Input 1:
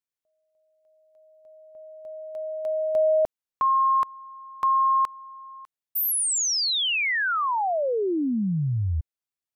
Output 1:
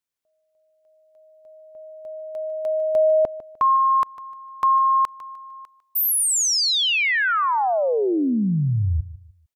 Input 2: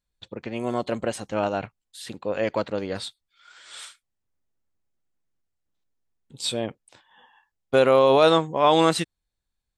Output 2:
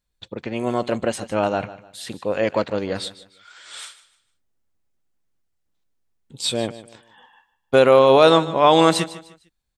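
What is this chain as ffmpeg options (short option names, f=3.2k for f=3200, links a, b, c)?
-af "aecho=1:1:151|302|453:0.158|0.0491|0.0152,volume=4dB"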